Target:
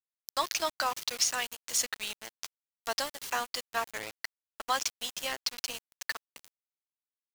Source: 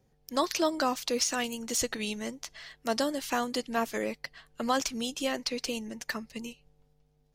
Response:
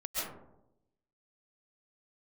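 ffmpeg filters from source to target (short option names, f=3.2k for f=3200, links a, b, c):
-af "highpass=860,aeval=exprs='val(0)*gte(abs(val(0)),0.0168)':c=same,volume=1.5dB"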